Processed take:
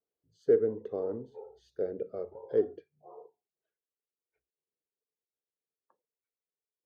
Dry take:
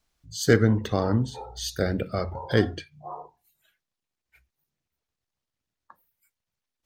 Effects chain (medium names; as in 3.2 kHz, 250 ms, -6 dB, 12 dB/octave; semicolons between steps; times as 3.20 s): band-pass filter 440 Hz, Q 5.5